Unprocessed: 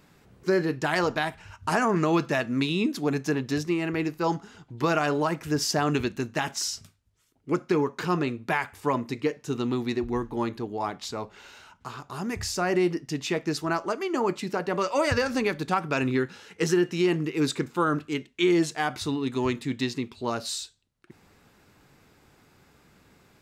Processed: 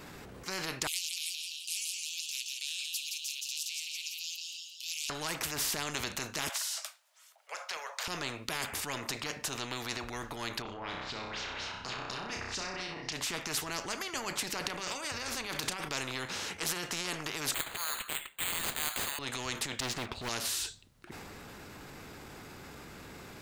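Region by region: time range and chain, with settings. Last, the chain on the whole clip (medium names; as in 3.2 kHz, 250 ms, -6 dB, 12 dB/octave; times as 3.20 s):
0.87–5.10 s: steep high-pass 2.6 kHz 96 dB/octave + frequency-shifting echo 170 ms, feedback 49%, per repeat +58 Hz, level -8.5 dB
6.49–8.08 s: steep high-pass 570 Hz 72 dB/octave + compression 4:1, threshold -34 dBFS
10.62–13.13 s: compression 3:1, threshold -38 dBFS + LFO low-pass sine 4.2 Hz 930–5500 Hz + flutter echo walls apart 5.4 m, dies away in 0.45 s
14.61–15.89 s: compressor with a negative ratio -34 dBFS + doubling 33 ms -14 dB
17.54–19.19 s: steep high-pass 940 Hz 48 dB/octave + careless resampling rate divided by 8×, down none, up hold
19.80–20.29 s: tilt EQ -4 dB/octave + waveshaping leveller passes 2 + upward expansion, over -30 dBFS
whole clip: transient shaper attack -6 dB, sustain +4 dB; spectrum-flattening compressor 4:1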